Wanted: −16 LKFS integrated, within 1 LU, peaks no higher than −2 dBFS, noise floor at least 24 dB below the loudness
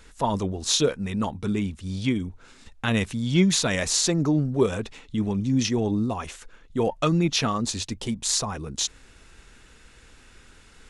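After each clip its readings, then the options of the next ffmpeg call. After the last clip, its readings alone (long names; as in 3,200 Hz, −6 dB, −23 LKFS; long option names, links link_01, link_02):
integrated loudness −25.0 LKFS; sample peak −7.0 dBFS; target loudness −16.0 LKFS
→ -af "volume=9dB,alimiter=limit=-2dB:level=0:latency=1"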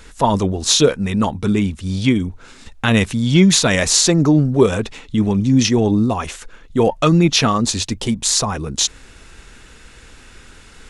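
integrated loudness −16.0 LKFS; sample peak −2.0 dBFS; background noise floor −44 dBFS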